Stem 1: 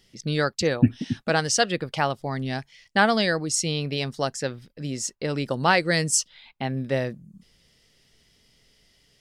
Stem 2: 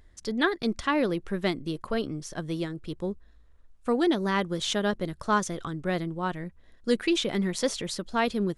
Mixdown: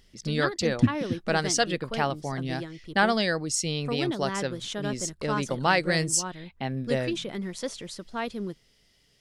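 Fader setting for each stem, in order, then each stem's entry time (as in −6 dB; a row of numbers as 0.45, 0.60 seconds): −3.0, −6.0 decibels; 0.00, 0.00 seconds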